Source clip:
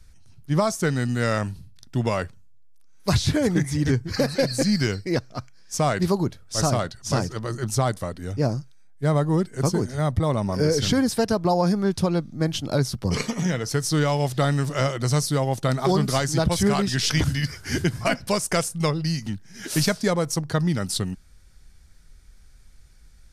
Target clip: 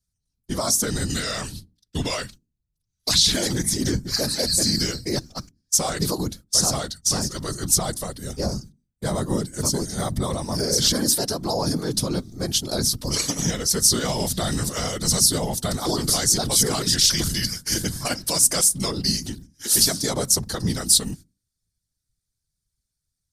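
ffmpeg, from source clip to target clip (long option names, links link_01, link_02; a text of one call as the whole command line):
ffmpeg -i in.wav -filter_complex "[0:a]agate=range=-30dB:threshold=-37dB:ratio=16:detection=peak,asettb=1/sr,asplit=3[link_01][link_02][link_03];[link_01]atrim=end=1.104[link_04];[link_02]atrim=start=1.1:end=3.53,asetpts=PTS-STARTPTS,afade=type=in:duration=0.004:curve=qsin,afade=type=out:start_time=2.426:duration=0.004:curve=qsin,equalizer=frequency=3100:width=0.57:gain=10[link_05];[link_03]atrim=start=3.526[link_06];[link_04][link_05]acrossfade=duration=0.004:curve1=hsin:curve2=qsin[link_07];[link_07][link_06]acrossfade=duration=0.004:curve1=qsin:curve2=hsin,bandreject=frequency=50:width_type=h:width=6,bandreject=frequency=100:width_type=h:width=6,bandreject=frequency=150:width_type=h:width=6,bandreject=frequency=200:width_type=h:width=6,bandreject=frequency=250:width_type=h:width=6,alimiter=limit=-16dB:level=0:latency=1:release=21,aexciter=amount=5.1:drive=2.7:freq=3500,afftfilt=real='hypot(re,im)*cos(2*PI*random(0))':imag='hypot(re,im)*sin(2*PI*random(1))':win_size=512:overlap=0.75,volume=5dB" out.wav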